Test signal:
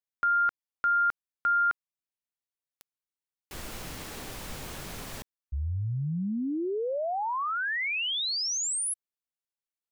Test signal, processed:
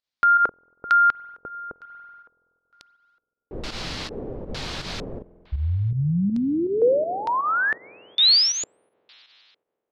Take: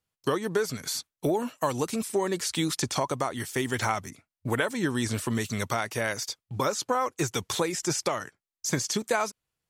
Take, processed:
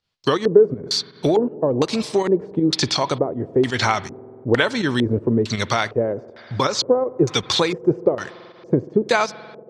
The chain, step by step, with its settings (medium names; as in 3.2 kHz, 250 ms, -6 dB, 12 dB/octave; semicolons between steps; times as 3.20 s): spring tank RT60 3.3 s, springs 47 ms, chirp 50 ms, DRR 17 dB; volume shaper 81 bpm, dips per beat 2, -9 dB, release 97 ms; LFO low-pass square 1.1 Hz 460–4400 Hz; trim +7.5 dB